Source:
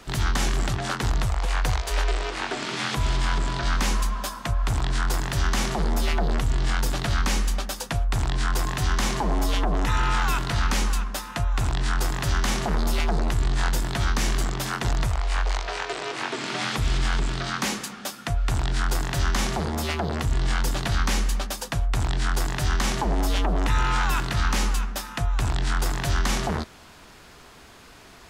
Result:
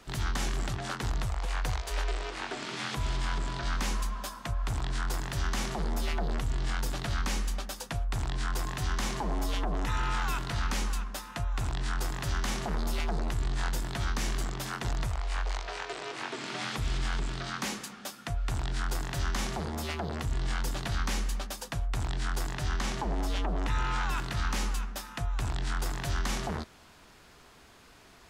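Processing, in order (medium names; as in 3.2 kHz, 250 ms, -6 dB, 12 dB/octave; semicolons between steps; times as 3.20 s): 22.54–24.18 s: treble shelf 12 kHz -11.5 dB; trim -7.5 dB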